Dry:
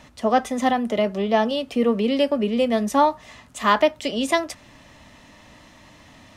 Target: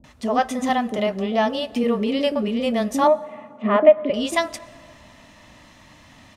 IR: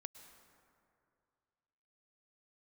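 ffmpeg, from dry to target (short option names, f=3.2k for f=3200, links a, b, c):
-filter_complex "[0:a]asettb=1/sr,asplit=3[a][b][c];[a]atrim=end=3.034[d];[b]atrim=start=3.03:end=4.1,asetpts=PTS-STARTPTS,afade=t=in:d=0.004:c=qsin,afade=t=out:st=1.066:d=0.004:c=qsin,highpass=f=140:w=0.5412,highpass=f=140:w=1.3066,equalizer=f=230:t=q:w=4:g=9,equalizer=f=390:t=q:w=4:g=5,equalizer=f=600:t=q:w=4:g=10,equalizer=f=940:t=q:w=4:g=-8,equalizer=f=1.6k:t=q:w=4:g=-9,lowpass=f=2.3k:w=0.5412,lowpass=f=2.3k:w=1.3066[e];[c]atrim=start=4.096[f];[d][e]acrossfade=d=0.004:c1=hsin:c2=qsin[g];[g][f]acrossfade=d=0.004:c1=qsin:c2=hsin,acrossover=split=430[h][i];[i]adelay=40[j];[h][j]amix=inputs=2:normalize=0,asplit=2[k][l];[1:a]atrim=start_sample=2205[m];[l][m]afir=irnorm=-1:irlink=0,volume=-4.5dB[n];[k][n]amix=inputs=2:normalize=0,volume=-2dB"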